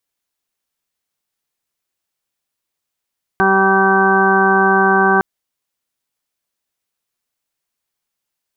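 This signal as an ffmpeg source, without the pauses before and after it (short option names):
-f lavfi -i "aevalsrc='0.112*sin(2*PI*193*t)+0.158*sin(2*PI*386*t)+0.0188*sin(2*PI*579*t)+0.158*sin(2*PI*772*t)+0.0891*sin(2*PI*965*t)+0.126*sin(2*PI*1158*t)+0.0237*sin(2*PI*1351*t)+0.178*sin(2*PI*1544*t)':d=1.81:s=44100"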